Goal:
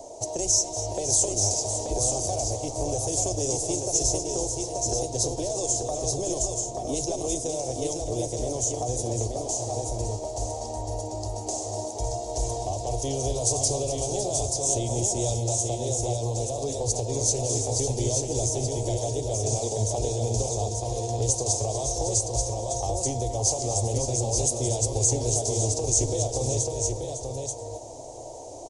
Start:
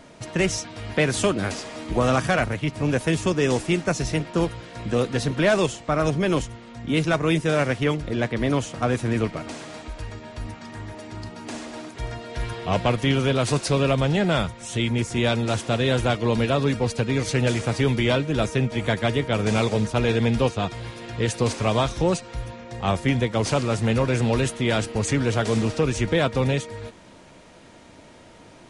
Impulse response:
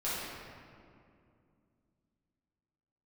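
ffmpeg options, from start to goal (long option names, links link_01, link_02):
-filter_complex "[0:a]firequalizer=gain_entry='entry(110,0);entry(160,-18);entry(350,5);entry(750,13);entry(1400,-26);entry(6400,15);entry(10000,5)':delay=0.05:min_phase=1,asplit=3[link_01][link_02][link_03];[link_01]afade=type=out:start_time=15.55:duration=0.02[link_04];[link_02]acompressor=threshold=-25dB:ratio=2,afade=type=in:start_time=15.55:duration=0.02,afade=type=out:start_time=16.61:duration=0.02[link_05];[link_03]afade=type=in:start_time=16.61:duration=0.02[link_06];[link_04][link_05][link_06]amix=inputs=3:normalize=0,alimiter=limit=-11dB:level=0:latency=1:release=36,acrossover=split=160|3000[link_07][link_08][link_09];[link_08]acompressor=threshold=-31dB:ratio=6[link_10];[link_07][link_10][link_09]amix=inputs=3:normalize=0,aecho=1:1:242|556|883:0.237|0.335|0.631,asplit=2[link_11][link_12];[1:a]atrim=start_sample=2205,adelay=7[link_13];[link_12][link_13]afir=irnorm=-1:irlink=0,volume=-19.5dB[link_14];[link_11][link_14]amix=inputs=2:normalize=0"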